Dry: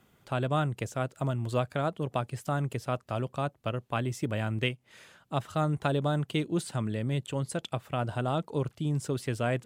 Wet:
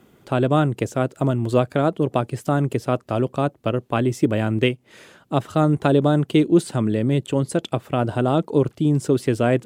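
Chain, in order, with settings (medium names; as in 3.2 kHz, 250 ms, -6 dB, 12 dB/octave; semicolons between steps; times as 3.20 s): peaking EQ 330 Hz +9.5 dB 1.5 oct; trim +6 dB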